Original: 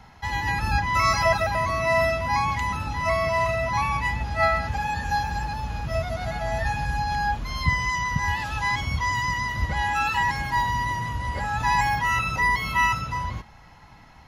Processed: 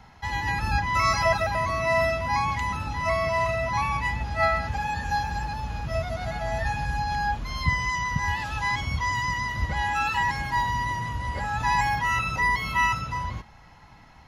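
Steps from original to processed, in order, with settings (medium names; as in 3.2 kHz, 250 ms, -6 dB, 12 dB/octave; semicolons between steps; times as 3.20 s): peaking EQ 14 kHz -4.5 dB 0.54 oct; trim -1.5 dB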